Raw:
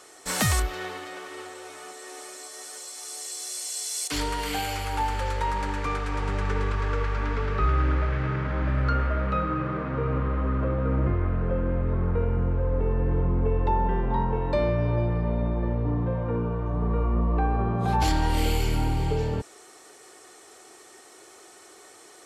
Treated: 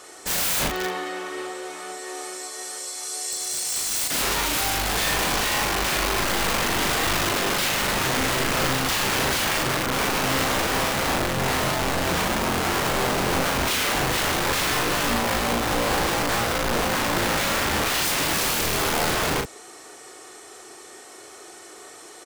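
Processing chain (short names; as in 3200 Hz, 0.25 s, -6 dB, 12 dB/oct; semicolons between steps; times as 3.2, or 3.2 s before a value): wrapped overs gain 25 dB; doubler 38 ms -4 dB; gain +5 dB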